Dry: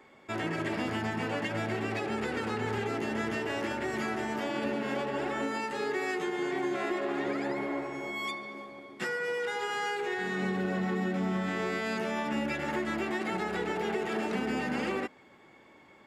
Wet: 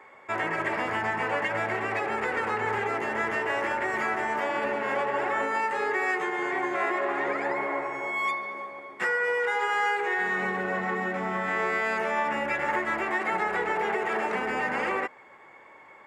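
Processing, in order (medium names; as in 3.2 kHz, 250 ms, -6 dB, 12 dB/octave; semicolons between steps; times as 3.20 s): graphic EQ 250/500/1000/2000/4000/8000 Hz -4/+7/+11/+11/-4/+4 dB; trim -4 dB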